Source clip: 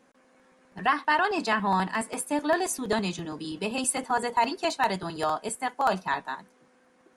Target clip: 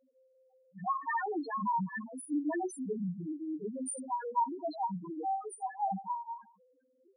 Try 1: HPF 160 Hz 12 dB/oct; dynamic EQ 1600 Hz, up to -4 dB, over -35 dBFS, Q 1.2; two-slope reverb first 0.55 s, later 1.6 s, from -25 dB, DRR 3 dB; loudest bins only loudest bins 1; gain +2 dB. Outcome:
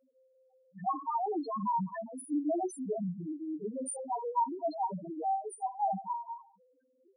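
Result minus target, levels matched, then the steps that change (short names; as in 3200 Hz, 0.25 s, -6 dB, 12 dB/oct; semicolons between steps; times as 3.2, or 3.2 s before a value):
2000 Hz band -17.0 dB
change: dynamic EQ 620 Hz, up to -4 dB, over -35 dBFS, Q 1.2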